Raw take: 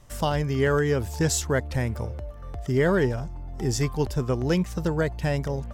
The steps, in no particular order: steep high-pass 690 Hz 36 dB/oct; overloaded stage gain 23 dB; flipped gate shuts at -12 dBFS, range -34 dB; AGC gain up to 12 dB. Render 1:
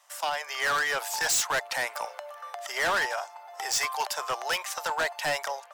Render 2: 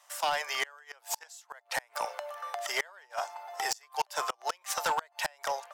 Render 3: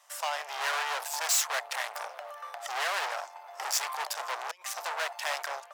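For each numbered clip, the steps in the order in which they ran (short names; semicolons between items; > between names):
AGC > steep high-pass > overloaded stage > flipped gate; steep high-pass > AGC > flipped gate > overloaded stage; flipped gate > AGC > overloaded stage > steep high-pass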